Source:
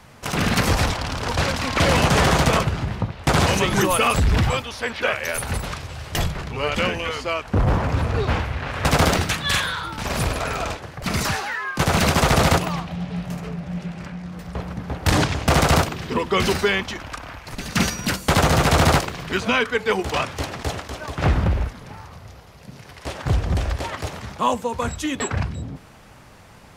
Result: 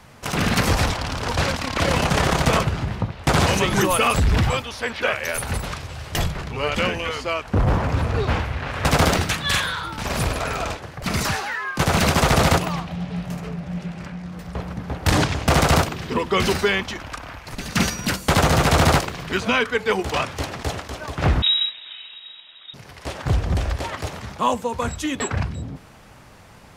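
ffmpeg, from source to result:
-filter_complex "[0:a]asplit=3[s0][s1][s2];[s0]afade=t=out:st=1.55:d=0.02[s3];[s1]tremolo=f=34:d=0.571,afade=t=in:st=1.55:d=0.02,afade=t=out:st=2.45:d=0.02[s4];[s2]afade=t=in:st=2.45:d=0.02[s5];[s3][s4][s5]amix=inputs=3:normalize=0,asettb=1/sr,asplit=3[s6][s7][s8];[s6]atrim=end=21.424[s9];[s7]atrim=start=21.42:end=22.74,asetpts=PTS-STARTPTS,afade=t=in:d=0.004:c=qsin,afade=t=out:st=1.316:d=0.004:c=qsin,lowpass=f=3300:t=q:w=0.5098,lowpass=f=3300:t=q:w=0.6013,lowpass=f=3300:t=q:w=0.9,lowpass=f=3300:t=q:w=2.563,afreqshift=-3900[s10];[s8]atrim=start=22.736[s11];[s9][s10]acrossfade=d=0.004:c1=hsin:c2=qsin[s12];[s12][s11]acrossfade=d=0.004:c1=qsin:c2=hsin"

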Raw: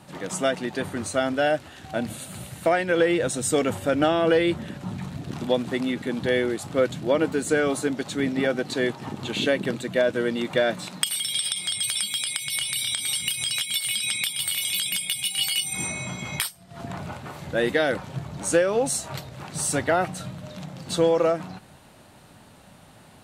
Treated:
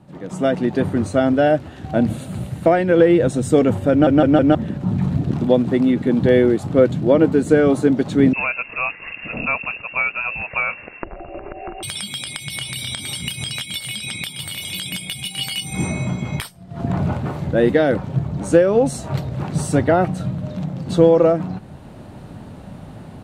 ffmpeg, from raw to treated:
-filter_complex "[0:a]asettb=1/sr,asplit=3[s0][s1][s2];[s0]atrim=end=8.334[s3];[s1]atrim=start=8.33:end=11.83,asetpts=PTS-STARTPTS,afade=t=in:d=0.004:c=qsin,afade=t=out:st=3.496:d=0.004:c=qsin,lowpass=f=2500:t=q:w=0.5098,lowpass=f=2500:t=q:w=0.6013,lowpass=f=2500:t=q:w=0.9,lowpass=f=2500:t=q:w=2.563,afreqshift=-2900[s4];[s2]atrim=start=11.826[s5];[s3][s4]acrossfade=d=0.004:c1=hsin:c2=qsin[s6];[s6][s5]acrossfade=d=0.004:c1=qsin:c2=hsin,asplit=5[s7][s8][s9][s10][s11];[s7]atrim=end=4.072[s12];[s8]atrim=start=3.908:end=4.072[s13];[s9]atrim=start=3.908:end=4.072[s14];[s10]atrim=start=3.908:end=4.072[s15];[s11]atrim=start=4.548[s16];[s12][s13]acrossfade=d=0.004:c1=hsin:c2=hsin[s17];[s17][s14]acrossfade=d=0.004:c1=hsin:c2=hsin[s18];[s18][s15]acrossfade=d=0.004:c1=hsin:c2=hsin[s19];[s19][s16]acrossfade=d=0.004:c1=hsin:c2=hsin,highshelf=f=5200:g=-7,dynaudnorm=f=270:g=3:m=4.73,tiltshelf=f=660:g=7,volume=0.708"

